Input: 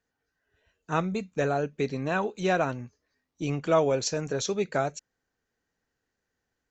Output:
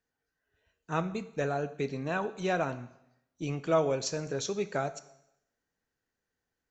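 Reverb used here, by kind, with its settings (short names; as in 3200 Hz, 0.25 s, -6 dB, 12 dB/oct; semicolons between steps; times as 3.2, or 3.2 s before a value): plate-style reverb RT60 0.83 s, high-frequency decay 1×, DRR 12.5 dB; gain -4.5 dB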